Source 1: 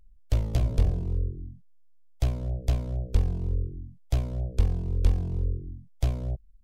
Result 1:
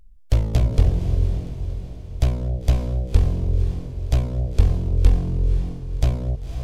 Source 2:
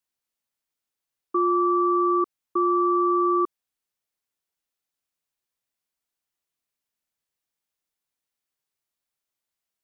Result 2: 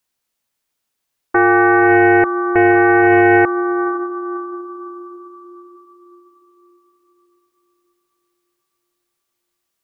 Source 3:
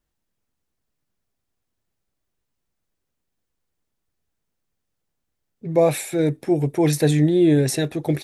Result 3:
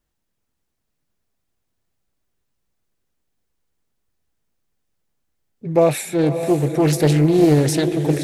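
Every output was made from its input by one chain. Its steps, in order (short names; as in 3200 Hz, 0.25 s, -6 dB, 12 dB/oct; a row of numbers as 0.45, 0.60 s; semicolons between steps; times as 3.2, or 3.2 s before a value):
on a send: diffused feedback echo 0.53 s, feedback 49%, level -9 dB; on the sum: Doppler distortion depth 0.37 ms; normalise peaks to -3 dBFS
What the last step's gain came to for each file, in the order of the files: +6.5, +10.0, +2.0 dB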